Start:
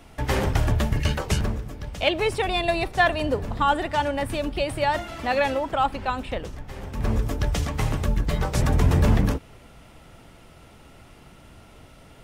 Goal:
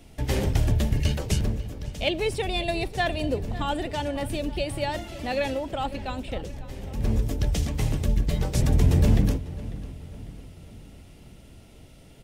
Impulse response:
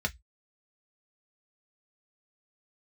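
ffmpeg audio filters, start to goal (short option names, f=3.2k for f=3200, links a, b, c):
-filter_complex "[0:a]equalizer=f=1.2k:t=o:w=1.5:g=-12,asplit=2[a][b];[b]adelay=547,lowpass=f=3.2k:p=1,volume=-16dB,asplit=2[c][d];[d]adelay=547,lowpass=f=3.2k:p=1,volume=0.5,asplit=2[e][f];[f]adelay=547,lowpass=f=3.2k:p=1,volume=0.5,asplit=2[g][h];[h]adelay=547,lowpass=f=3.2k:p=1,volume=0.5[i];[c][e][g][i]amix=inputs=4:normalize=0[j];[a][j]amix=inputs=2:normalize=0"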